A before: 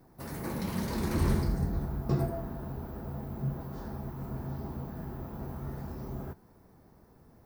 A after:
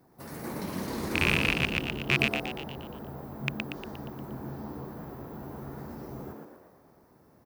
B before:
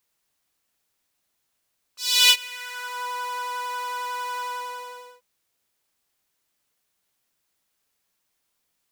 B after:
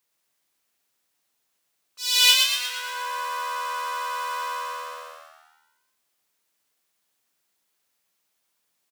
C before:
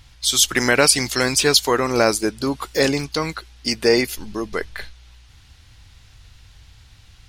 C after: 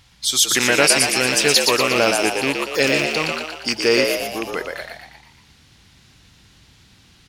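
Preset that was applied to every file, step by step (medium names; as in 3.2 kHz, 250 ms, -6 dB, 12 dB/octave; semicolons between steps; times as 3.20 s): rattle on loud lows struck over -25 dBFS, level -9 dBFS; high-pass 140 Hz 6 dB/octave; frequency-shifting echo 118 ms, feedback 54%, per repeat +78 Hz, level -4 dB; trim -1 dB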